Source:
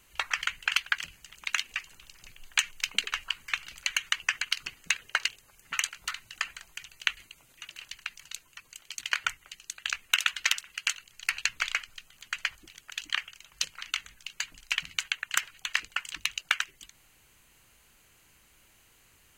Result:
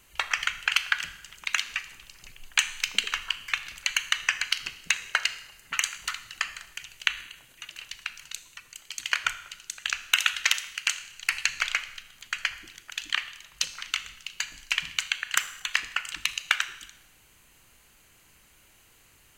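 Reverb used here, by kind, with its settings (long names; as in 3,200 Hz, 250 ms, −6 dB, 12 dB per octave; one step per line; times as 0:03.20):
four-comb reverb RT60 0.89 s, combs from 26 ms, DRR 11.5 dB
level +2.5 dB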